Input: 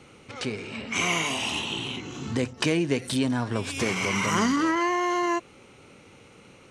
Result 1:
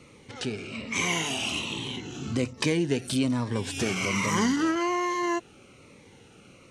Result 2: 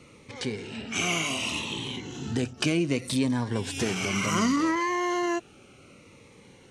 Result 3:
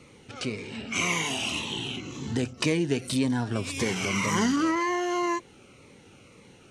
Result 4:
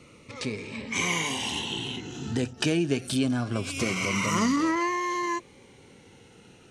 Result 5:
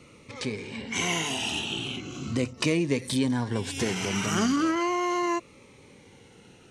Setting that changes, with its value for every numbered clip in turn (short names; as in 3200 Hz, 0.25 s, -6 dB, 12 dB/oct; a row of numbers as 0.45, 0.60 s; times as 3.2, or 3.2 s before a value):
cascading phaser, rate: 1.2, 0.66, 1.9, 0.23, 0.38 Hz